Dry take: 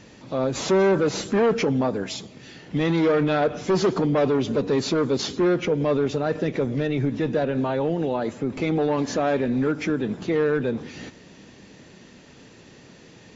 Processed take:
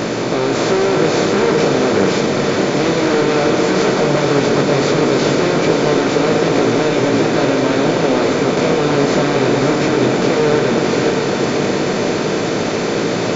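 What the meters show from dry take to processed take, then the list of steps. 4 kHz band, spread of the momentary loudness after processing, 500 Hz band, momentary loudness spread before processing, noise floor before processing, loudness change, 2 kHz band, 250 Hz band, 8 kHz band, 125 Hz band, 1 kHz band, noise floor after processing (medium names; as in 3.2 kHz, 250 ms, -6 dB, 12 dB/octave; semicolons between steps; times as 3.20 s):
+13.0 dB, 3 LU, +9.0 dB, 8 LU, -49 dBFS, +8.5 dB, +12.5 dB, +8.5 dB, no reading, +8.0 dB, +11.5 dB, -18 dBFS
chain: spectral levelling over time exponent 0.2; chorus 0.15 Hz, delay 17.5 ms, depth 4.8 ms; echo that smears into a reverb 579 ms, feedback 57%, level -5 dB; trim +1 dB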